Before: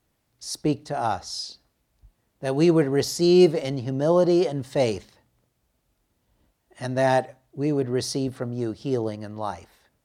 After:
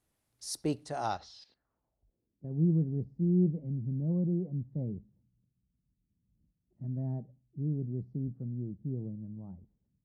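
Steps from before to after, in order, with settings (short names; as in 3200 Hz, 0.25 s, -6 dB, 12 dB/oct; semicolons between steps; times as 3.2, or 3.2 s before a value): low-pass sweep 11000 Hz -> 180 Hz, 0.79–2.53; 1.17–2.51 level quantiser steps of 15 dB; gain -8.5 dB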